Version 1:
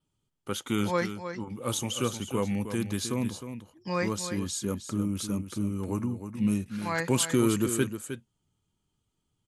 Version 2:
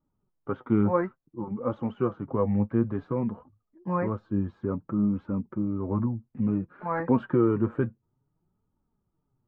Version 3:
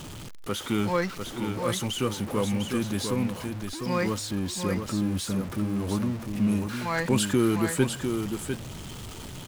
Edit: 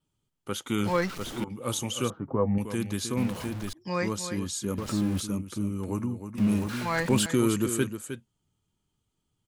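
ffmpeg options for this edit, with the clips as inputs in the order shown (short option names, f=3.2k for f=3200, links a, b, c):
-filter_complex "[2:a]asplit=4[a][b][c][d];[0:a]asplit=6[e][f][g][h][i][j];[e]atrim=end=0.862[k];[a]atrim=start=0.858:end=1.442[l];[f]atrim=start=1.438:end=2.102[m];[1:a]atrim=start=2.098:end=2.582[n];[g]atrim=start=2.578:end=3.172[o];[b]atrim=start=3.168:end=3.732[p];[h]atrim=start=3.728:end=4.782[q];[c]atrim=start=4.778:end=5.202[r];[i]atrim=start=5.198:end=6.382[s];[d]atrim=start=6.378:end=7.262[t];[j]atrim=start=7.258[u];[k][l]acrossfade=d=0.004:c1=hsin:c2=hsin[v];[v][m]acrossfade=d=0.004:c1=hsin:c2=hsin[w];[w][n]acrossfade=d=0.004:c1=hsin:c2=hsin[x];[x][o]acrossfade=d=0.004:c1=hsin:c2=hsin[y];[y][p]acrossfade=d=0.004:c1=hsin:c2=hsin[z];[z][q]acrossfade=d=0.004:c1=hsin:c2=hsin[aa];[aa][r]acrossfade=d=0.004:c1=hsin:c2=hsin[ab];[ab][s]acrossfade=d=0.004:c1=hsin:c2=hsin[ac];[ac][t]acrossfade=d=0.004:c1=hsin:c2=hsin[ad];[ad][u]acrossfade=d=0.004:c1=hsin:c2=hsin"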